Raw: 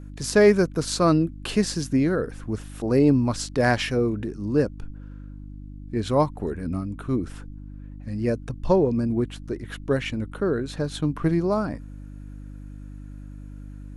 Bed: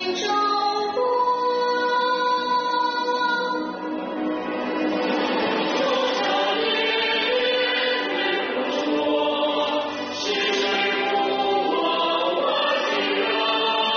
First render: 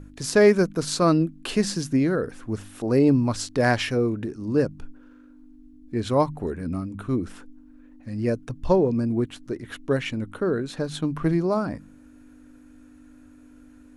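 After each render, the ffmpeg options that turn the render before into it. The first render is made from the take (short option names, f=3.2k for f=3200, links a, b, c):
-af "bandreject=f=50:t=h:w=4,bandreject=f=100:t=h:w=4,bandreject=f=150:t=h:w=4,bandreject=f=200:t=h:w=4"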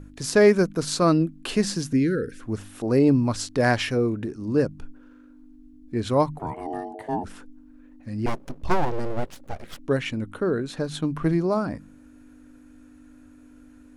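-filter_complex "[0:a]asettb=1/sr,asplit=3[a][b][c];[a]atrim=end=1.934[d];[b]atrim=start=1.93:end=2.4,asetpts=PTS-STARTPTS,afade=t=in:d=0.004:c=qsin,afade=t=out:st=0.466:d=0.004:c=qsin,asuperstop=centerf=850:order=8:qfactor=0.91[e];[c]atrim=start=2.396[f];[d][e]acrossfade=d=0.004:c1=hsin:c2=qsin[g];[g][f]acrossfade=d=0.004:c1=qsin:c2=hsin,asplit=3[h][i][j];[h]afade=t=out:st=6.38:d=0.02[k];[i]aeval=exprs='val(0)*sin(2*PI*540*n/s)':c=same,afade=t=in:st=6.38:d=0.02,afade=t=out:st=7.23:d=0.02[l];[j]afade=t=in:st=7.23:d=0.02[m];[k][l][m]amix=inputs=3:normalize=0,asettb=1/sr,asplit=3[n][o][p];[n]atrim=end=8.264[q];[o]atrim=start=8.26:end=9.79,asetpts=PTS-STARTPTS,afade=t=in:d=0.004:c=qsin,afade=t=out:st=1.526:d=0.004:c=qsin,aeval=exprs='abs(val(0))':c=same[r];[p]atrim=start=9.786[s];[q][r]acrossfade=d=0.004:c1=hsin:c2=qsin[t];[t][s]acrossfade=d=0.004:c1=qsin:c2=hsin"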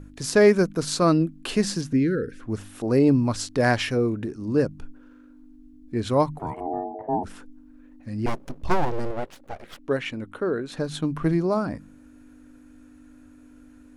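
-filter_complex "[0:a]asettb=1/sr,asplit=3[a][b][c];[a]atrim=end=1.814[d];[b]atrim=start=1.81:end=2.5,asetpts=PTS-STARTPTS,afade=t=in:d=0.004:c=qsin,afade=t=out:st=0.686:d=0.004:c=qsin,lowpass=f=3.6k:p=1[e];[c]atrim=start=2.496[f];[d][e]acrossfade=d=0.004:c1=hsin:c2=qsin[g];[g][f]acrossfade=d=0.004:c1=qsin:c2=hsin,asettb=1/sr,asplit=3[h][i][j];[h]atrim=end=6.604[k];[i]atrim=start=6.6:end=7.23,asetpts=PTS-STARTPTS,afade=t=in:d=0.004:c=qsin,afade=t=out:st=0.626:d=0.004:c=qsin,lowpass=f=770:t=q:w=1.5[l];[j]atrim=start=7.226[m];[k][l]acrossfade=d=0.004:c1=hsin:c2=qsin[n];[n][m]acrossfade=d=0.004:c1=qsin:c2=hsin,asettb=1/sr,asplit=3[o][p][q];[o]atrim=end=9.114[r];[p]atrim=start=9.11:end=10.72,asetpts=PTS-STARTPTS,afade=t=in:d=0.004:c=qsin,afade=t=out:st=1.606:d=0.004:c=qsin,bass=f=250:g=-7,treble=f=4k:g=-5[s];[q]atrim=start=10.716[t];[r][s]acrossfade=d=0.004:c1=hsin:c2=qsin[u];[u][t]acrossfade=d=0.004:c1=qsin:c2=hsin"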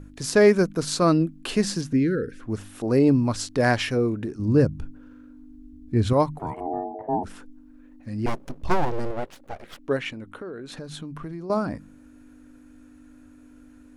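-filter_complex "[0:a]asettb=1/sr,asplit=3[a][b][c];[a]atrim=end=4.394[d];[b]atrim=start=4.39:end=6.13,asetpts=PTS-STARTPTS,afade=t=in:d=0.004:c=qsin,afade=t=out:st=1.736:d=0.004:c=qsin,equalizer=f=77:w=0.53:g=12[e];[c]atrim=start=6.126[f];[d][e]acrossfade=d=0.004:c1=hsin:c2=qsin[g];[g][f]acrossfade=d=0.004:c1=qsin:c2=hsin,asettb=1/sr,asplit=3[h][i][j];[h]atrim=end=10.114[k];[i]atrim=start=10.11:end=11.5,asetpts=PTS-STARTPTS,afade=t=in:d=0.004:c=qsin,afade=t=out:st=1.386:d=0.004:c=qsin,acompressor=threshold=-34dB:ratio=4:attack=3.2:release=140:knee=1:detection=peak[l];[j]atrim=start=11.496[m];[k][l]acrossfade=d=0.004:c1=hsin:c2=qsin[n];[n][m]acrossfade=d=0.004:c1=qsin:c2=hsin"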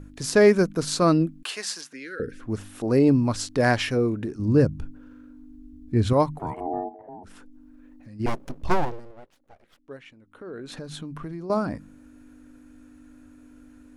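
-filter_complex "[0:a]asettb=1/sr,asplit=3[a][b][c];[a]atrim=end=1.434[d];[b]atrim=start=1.43:end=2.2,asetpts=PTS-STARTPTS,afade=t=in:d=0.004:c=qsin,afade=t=out:st=0.766:d=0.004:c=qsin,highpass=930[e];[c]atrim=start=2.196[f];[d][e]acrossfade=d=0.004:c1=hsin:c2=qsin[g];[g][f]acrossfade=d=0.004:c1=qsin:c2=hsin,asplit=3[h][i][j];[h]afade=t=out:st=6.88:d=0.02[k];[i]acompressor=threshold=-44dB:ratio=3:attack=3.2:release=140:knee=1:detection=peak,afade=t=in:st=6.88:d=0.02,afade=t=out:st=8.19:d=0.02[l];[j]afade=t=in:st=8.19:d=0.02[m];[k][l][m]amix=inputs=3:normalize=0,asplit=3[n][o][p];[n]atrim=end=9.01,asetpts=PTS-STARTPTS,afade=t=out:st=8.78:d=0.23:silence=0.149624[q];[o]atrim=start=9.01:end=10.31,asetpts=PTS-STARTPTS,volume=-16.5dB[r];[p]atrim=start=10.31,asetpts=PTS-STARTPTS,afade=t=in:d=0.23:silence=0.149624[s];[q][r][s]concat=n=3:v=0:a=1"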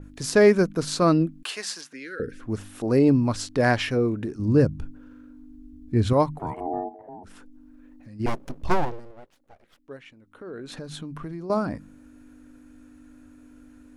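-af "adynamicequalizer=threshold=0.00708:dfrequency=4800:dqfactor=0.7:tfrequency=4800:tqfactor=0.7:attack=5:release=100:ratio=0.375:range=2.5:mode=cutabove:tftype=highshelf"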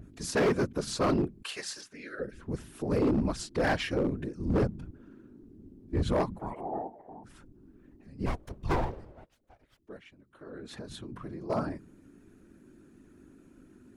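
-af "afftfilt=real='hypot(re,im)*cos(2*PI*random(0))':imag='hypot(re,im)*sin(2*PI*random(1))':win_size=512:overlap=0.75,volume=21.5dB,asoftclip=hard,volume=-21.5dB"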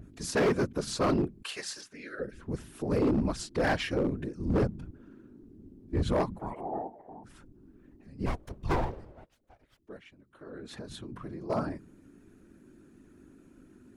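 -af anull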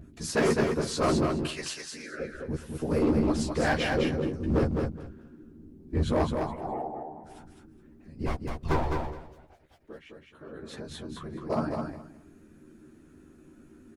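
-filter_complex "[0:a]asplit=2[a][b];[b]adelay=13,volume=-4dB[c];[a][c]amix=inputs=2:normalize=0,aecho=1:1:209|418|627:0.596|0.107|0.0193"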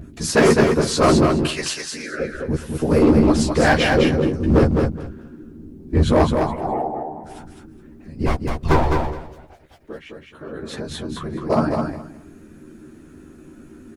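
-af "volume=10.5dB"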